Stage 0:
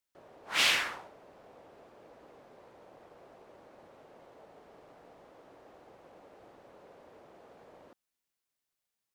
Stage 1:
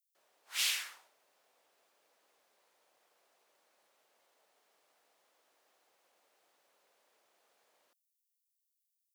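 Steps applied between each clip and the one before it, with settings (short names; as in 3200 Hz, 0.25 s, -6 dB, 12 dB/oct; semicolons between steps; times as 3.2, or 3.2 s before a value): differentiator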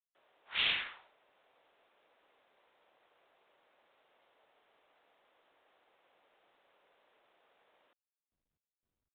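gain +4 dB; IMA ADPCM 32 kbps 8000 Hz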